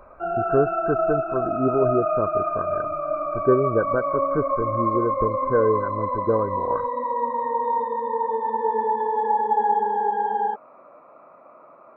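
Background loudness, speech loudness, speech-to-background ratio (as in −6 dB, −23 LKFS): −24.5 LKFS, −25.5 LKFS, −1.0 dB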